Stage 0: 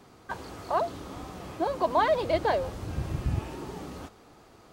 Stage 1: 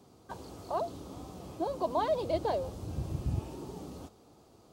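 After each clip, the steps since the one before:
high-pass filter 50 Hz
parametric band 1,800 Hz −13 dB 1.3 octaves
level −3 dB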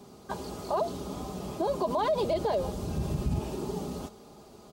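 comb filter 4.9 ms, depth 52%
brickwall limiter −27.5 dBFS, peak gain reduction 10 dB
level +7.5 dB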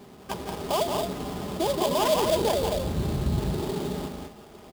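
on a send: loudspeakers that aren't time-aligned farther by 60 metres −5 dB, 73 metres −7 dB
on the sum: sample-rate reduction 4,100 Hz, jitter 20%
level +2.5 dB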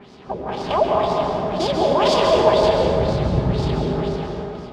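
auto-filter low-pass sine 2 Hz 510–5,400 Hz
dense smooth reverb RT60 2.5 s, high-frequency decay 0.45×, pre-delay 120 ms, DRR 0 dB
level +3 dB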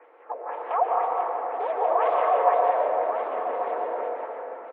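on a send: single-tap delay 1,137 ms −9 dB
on the sum: single-sideband voice off tune +85 Hz 370–2,100 Hz
level −5 dB

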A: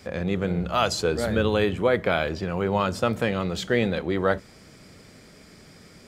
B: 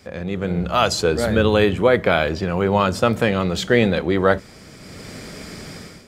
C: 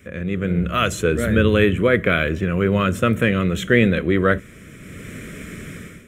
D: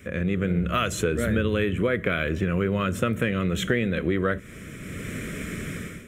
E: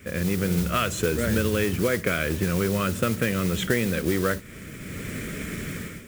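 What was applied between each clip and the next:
automatic gain control gain up to 15.5 dB; level −1 dB
phaser with its sweep stopped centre 2,000 Hz, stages 4; level +3 dB
downward compressor, threshold −22 dBFS, peak gain reduction 12 dB; level +1.5 dB
noise that follows the level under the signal 13 dB

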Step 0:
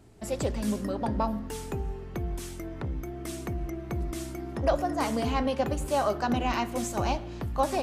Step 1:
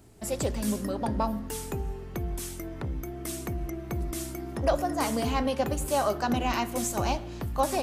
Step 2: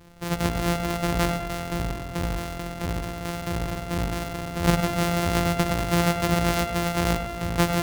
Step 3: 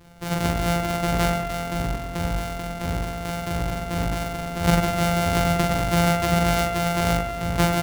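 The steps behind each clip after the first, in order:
high-shelf EQ 7,900 Hz +11 dB
samples sorted by size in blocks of 256 samples; bucket-brigade delay 100 ms, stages 2,048, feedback 62%, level −8 dB; level +4 dB
double-tracking delay 42 ms −3 dB

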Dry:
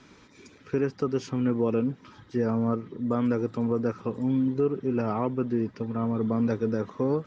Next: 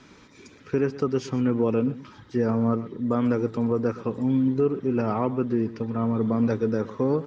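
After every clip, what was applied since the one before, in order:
slap from a distant wall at 21 metres, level −16 dB
level +2.5 dB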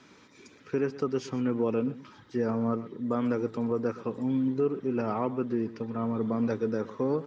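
high-pass filter 170 Hz 6 dB per octave
level −3.5 dB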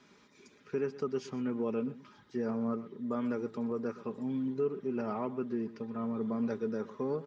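comb filter 4.9 ms, depth 40%
level −6.5 dB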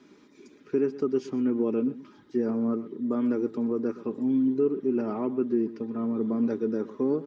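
parametric band 310 Hz +15 dB 0.77 octaves

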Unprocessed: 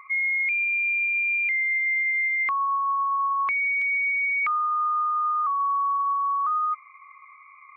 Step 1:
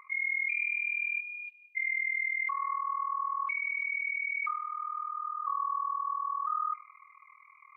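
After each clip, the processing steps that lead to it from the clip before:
four-comb reverb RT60 1.6 s, combs from 31 ms, DRR 13.5 dB
amplitude modulation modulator 40 Hz, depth 80%
time-frequency box erased 0:01.20–0:01.76, 790–2,400 Hz
level −4 dB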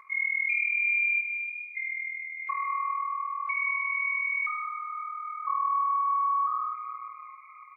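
comb filter 4.6 ms, depth 62%
feedback echo with a low-pass in the loop 890 ms, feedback 53%, low-pass 2,300 Hz, level −20 dB
dense smooth reverb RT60 2.4 s, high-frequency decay 0.85×, DRR 3 dB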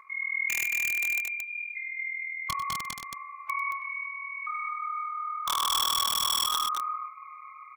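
dynamic equaliser 2,200 Hz, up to −5 dB, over −40 dBFS, Q 6.3
wrap-around overflow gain 22.5 dB
on a send: loudspeakers that aren't time-aligned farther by 33 metres −12 dB, 77 metres −4 dB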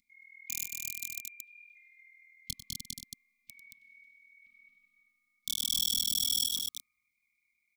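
elliptic band-stop filter 250–3,700 Hz, stop band 60 dB

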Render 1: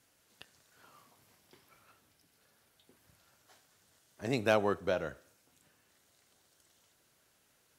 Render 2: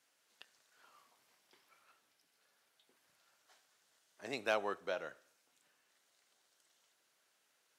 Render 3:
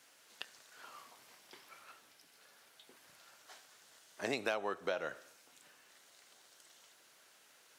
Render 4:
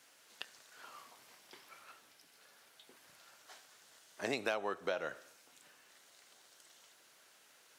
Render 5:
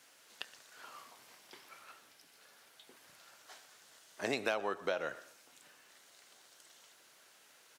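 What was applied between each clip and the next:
meter weighting curve A; level −5 dB
downward compressor 6 to 1, threshold −45 dBFS, peak gain reduction 15.5 dB; level +12 dB
no processing that can be heard
far-end echo of a speakerphone 120 ms, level −17 dB; level +1.5 dB

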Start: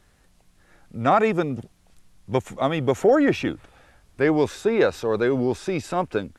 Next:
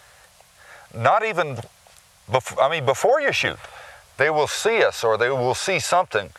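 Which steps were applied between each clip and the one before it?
drawn EQ curve 120 Hz 0 dB, 290 Hz −15 dB, 560 Hz +10 dB
downward compressor 6 to 1, threshold −19 dBFS, peak gain reduction 14.5 dB
high-pass filter 67 Hz
level +4 dB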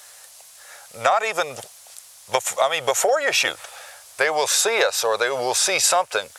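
bass and treble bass −15 dB, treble +13 dB
level −1 dB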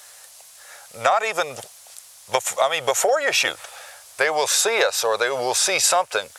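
no processing that can be heard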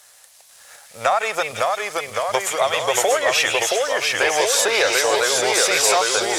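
echo through a band-pass that steps 167 ms, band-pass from 2,600 Hz, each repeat 0.7 octaves, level −3.5 dB
delay with pitch and tempo change per echo 492 ms, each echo −1 semitone, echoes 3
leveller curve on the samples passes 1
level −3.5 dB

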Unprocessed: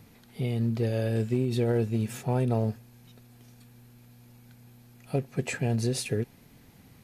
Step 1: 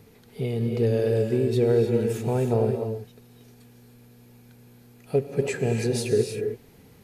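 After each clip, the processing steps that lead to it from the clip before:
parametric band 430 Hz +11.5 dB 0.35 octaves
reverb whose tail is shaped and stops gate 340 ms rising, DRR 4 dB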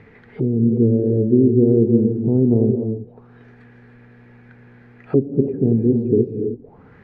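envelope-controlled low-pass 290–2,200 Hz down, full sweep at −28 dBFS
level +5 dB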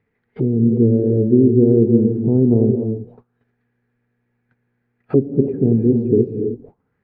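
noise gate −41 dBFS, range −25 dB
level +1.5 dB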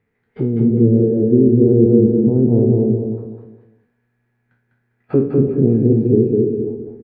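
peak hold with a decay on every bin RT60 0.45 s
on a send: repeating echo 201 ms, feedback 34%, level −3 dB
on the sum: level −1 dB

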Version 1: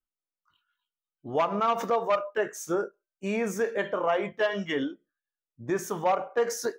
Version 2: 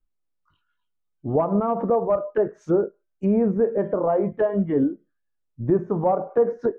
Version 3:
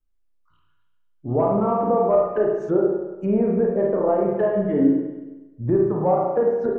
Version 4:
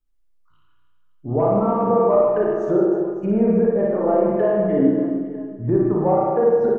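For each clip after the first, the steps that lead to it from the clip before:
spectral tilt −3.5 dB per octave; treble cut that deepens with the level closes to 840 Hz, closed at −23 dBFS; level +3.5 dB
spring reverb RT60 1.1 s, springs 33/51 ms, chirp 50 ms, DRR −1.5 dB; level −2 dB
reverse bouncing-ball delay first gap 60 ms, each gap 1.6×, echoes 5

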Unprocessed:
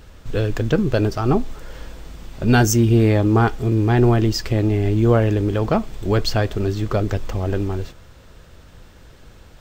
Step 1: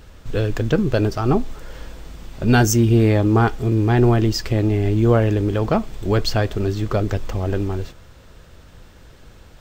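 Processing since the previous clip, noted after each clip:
no processing that can be heard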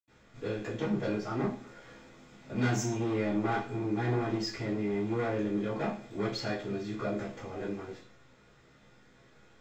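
tuned comb filter 68 Hz, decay 0.16 s, harmonics all, mix 80%
hard clipping −19.5 dBFS, distortion −11 dB
convolution reverb RT60 0.50 s, pre-delay 77 ms
level +1.5 dB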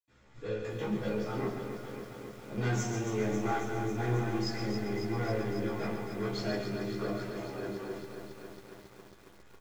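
single-tap delay 139 ms −7.5 dB
multi-voice chorus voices 6, 0.28 Hz, delay 16 ms, depth 2.3 ms
feedback echo at a low word length 273 ms, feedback 80%, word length 9 bits, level −8 dB

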